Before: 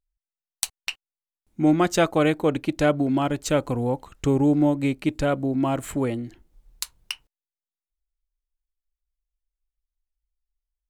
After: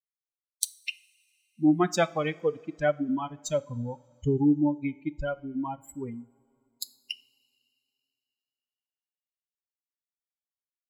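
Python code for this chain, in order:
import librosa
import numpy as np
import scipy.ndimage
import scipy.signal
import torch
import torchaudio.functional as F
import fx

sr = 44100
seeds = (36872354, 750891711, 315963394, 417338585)

y = fx.bin_expand(x, sr, power=3.0)
y = fx.rev_double_slope(y, sr, seeds[0], early_s=0.45, late_s=2.9, knee_db=-18, drr_db=16.0)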